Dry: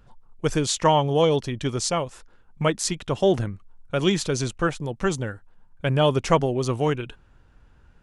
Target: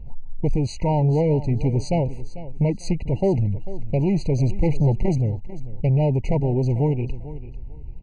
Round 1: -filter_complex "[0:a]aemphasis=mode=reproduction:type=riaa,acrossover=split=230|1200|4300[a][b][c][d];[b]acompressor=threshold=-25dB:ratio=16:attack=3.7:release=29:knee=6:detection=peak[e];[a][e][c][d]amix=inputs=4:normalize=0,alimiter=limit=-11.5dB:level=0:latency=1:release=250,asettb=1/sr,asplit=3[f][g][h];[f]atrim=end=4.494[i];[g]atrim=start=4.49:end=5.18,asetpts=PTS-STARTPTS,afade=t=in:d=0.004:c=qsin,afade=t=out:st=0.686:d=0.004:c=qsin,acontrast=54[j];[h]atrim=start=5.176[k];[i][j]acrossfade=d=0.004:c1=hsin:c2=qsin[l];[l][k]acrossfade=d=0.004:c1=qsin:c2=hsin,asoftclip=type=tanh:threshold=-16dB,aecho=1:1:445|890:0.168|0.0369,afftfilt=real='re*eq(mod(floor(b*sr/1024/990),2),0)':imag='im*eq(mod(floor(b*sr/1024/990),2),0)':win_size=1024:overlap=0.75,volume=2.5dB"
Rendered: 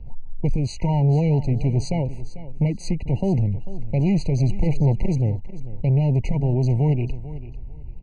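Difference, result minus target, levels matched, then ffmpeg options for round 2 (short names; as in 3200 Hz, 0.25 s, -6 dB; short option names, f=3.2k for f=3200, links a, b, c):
compressor: peak gain reduction +13.5 dB
-filter_complex "[0:a]aemphasis=mode=reproduction:type=riaa,alimiter=limit=-11.5dB:level=0:latency=1:release=250,asettb=1/sr,asplit=3[a][b][c];[a]atrim=end=4.494[d];[b]atrim=start=4.49:end=5.18,asetpts=PTS-STARTPTS,afade=t=in:d=0.004:c=qsin,afade=t=out:st=0.686:d=0.004:c=qsin,acontrast=54[e];[c]atrim=start=5.176[f];[d][e]acrossfade=d=0.004:c1=hsin:c2=qsin[g];[g][f]acrossfade=d=0.004:c1=qsin:c2=hsin,asoftclip=type=tanh:threshold=-16dB,aecho=1:1:445|890:0.168|0.0369,afftfilt=real='re*eq(mod(floor(b*sr/1024/990),2),0)':imag='im*eq(mod(floor(b*sr/1024/990),2),0)':win_size=1024:overlap=0.75,volume=2.5dB"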